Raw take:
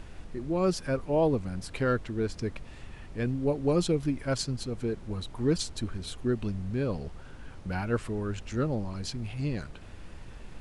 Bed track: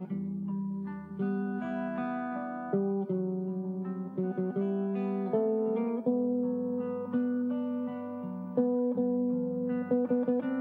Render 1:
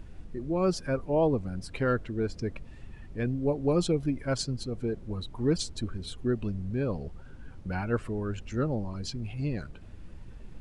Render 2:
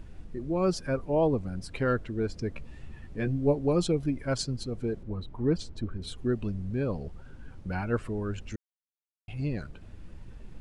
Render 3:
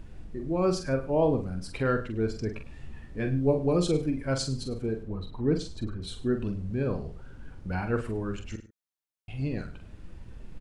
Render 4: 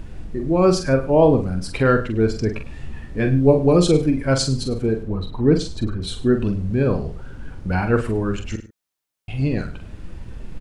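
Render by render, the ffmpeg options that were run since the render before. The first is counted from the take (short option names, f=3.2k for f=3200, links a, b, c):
-af "afftdn=nr=9:nf=-46"
-filter_complex "[0:a]asettb=1/sr,asplit=3[a][b][c];[a]atrim=end=2.564[d];[b]atrim=start=2.56:end=3.59,asetpts=PTS-STARTPTS,afade=t=in:d=0.004:c=qsin,afade=t=out:st=1.026:d=0.004:c=qsin,asplit=2[e][f];[f]adelay=14,volume=-5dB[g];[e][g]amix=inputs=2:normalize=0,atrim=end_sample=45423[h];[c]atrim=start=3.586[i];[d][h]acrossfade=d=0.004:c1=hsin:c2=qsin[j];[j][i]acrossfade=d=0.004:c1=qsin:c2=hsin,asettb=1/sr,asplit=3[k][l][m];[k]atrim=end=5.034[n];[l]atrim=start=5.03:end=6.02,asetpts=PTS-STARTPTS,afade=t=in:d=0.004:c=qsin,afade=t=out:st=0.986:d=0.004:c=qsin,lowpass=f=1.8k:p=1[o];[m]atrim=start=6.016[p];[n][o]acrossfade=d=0.004:c1=hsin:c2=qsin[q];[q][p]acrossfade=d=0.004:c1=qsin:c2=hsin,asplit=3[r][s][t];[r]atrim=end=8.56,asetpts=PTS-STARTPTS,afade=t=out:st=8.556:d=0.004:c=hsin[u];[s]atrim=start=8.56:end=9.28,asetpts=PTS-STARTPTS,volume=0[v];[t]atrim=start=9.28,asetpts=PTS-STARTPTS,afade=t=in:d=0.004:c=hsin[w];[u][v][w]concat=n=3:v=0:a=1"
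-filter_complex "[0:a]asplit=2[a][b];[b]adelay=45,volume=-7dB[c];[a][c]amix=inputs=2:normalize=0,aecho=1:1:103:0.158"
-af "volume=10dB"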